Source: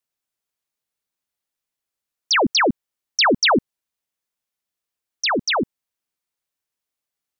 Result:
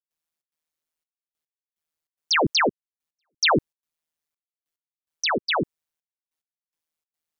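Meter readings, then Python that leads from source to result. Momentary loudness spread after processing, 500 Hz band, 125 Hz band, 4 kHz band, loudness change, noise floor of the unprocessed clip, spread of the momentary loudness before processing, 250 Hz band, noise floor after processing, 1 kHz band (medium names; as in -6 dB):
6 LU, -4.0 dB, +1.5 dB, -4.5 dB, -3.5 dB, under -85 dBFS, 11 LU, -6.0 dB, under -85 dBFS, -4.0 dB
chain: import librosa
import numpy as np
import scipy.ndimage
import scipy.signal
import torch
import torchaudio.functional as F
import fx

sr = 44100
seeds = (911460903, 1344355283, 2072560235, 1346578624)

y = fx.step_gate(x, sr, bpm=145, pattern='.xxx.xxxxx...x..', floor_db=-60.0, edge_ms=4.5)
y = y * np.sin(2.0 * np.pi * 79.0 * np.arange(len(y)) / sr)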